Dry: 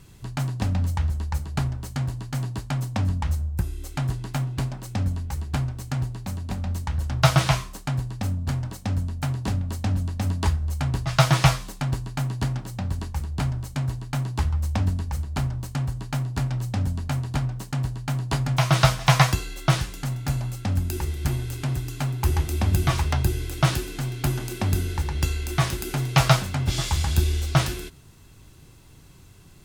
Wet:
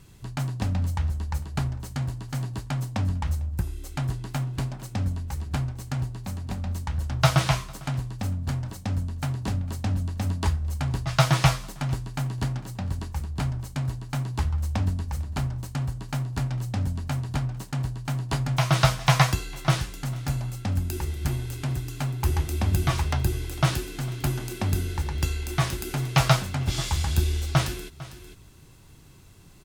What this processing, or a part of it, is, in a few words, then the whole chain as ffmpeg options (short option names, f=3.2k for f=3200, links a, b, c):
ducked delay: -filter_complex "[0:a]asplit=3[a][b][c];[b]adelay=451,volume=-6.5dB[d];[c]apad=whole_len=1327195[e];[d][e]sidechaincompress=threshold=-40dB:ratio=8:attack=9.1:release=454[f];[a][f]amix=inputs=2:normalize=0,volume=-2dB"